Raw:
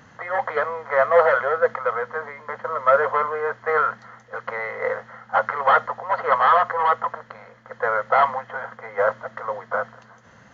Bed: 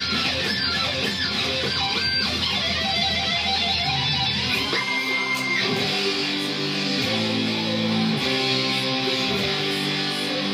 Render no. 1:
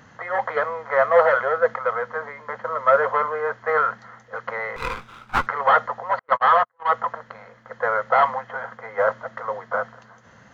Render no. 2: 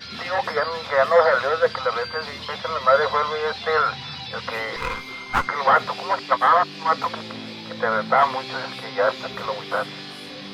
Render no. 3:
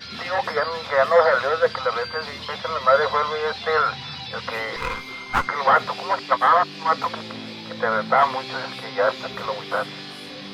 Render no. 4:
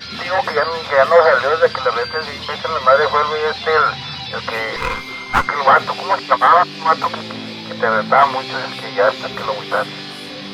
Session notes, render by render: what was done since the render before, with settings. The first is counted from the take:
4.76–5.47 minimum comb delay 0.81 ms; 6.19–6.94 gate -19 dBFS, range -45 dB
add bed -12 dB
nothing audible
gain +6 dB; limiter -1 dBFS, peak gain reduction 2 dB

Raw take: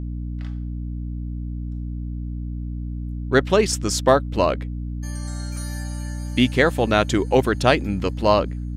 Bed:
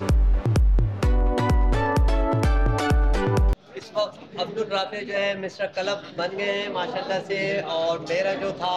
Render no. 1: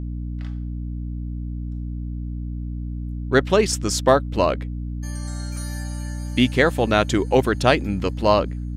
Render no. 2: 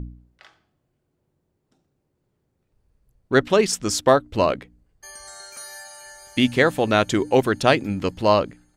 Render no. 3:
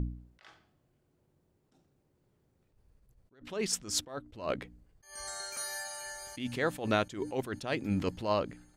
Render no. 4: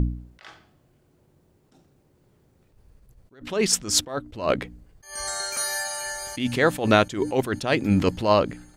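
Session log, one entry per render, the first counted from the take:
nothing audible
de-hum 60 Hz, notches 5
compressor 12:1, threshold -23 dBFS, peak gain reduction 14 dB; attack slew limiter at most 140 dB/s
gain +11 dB

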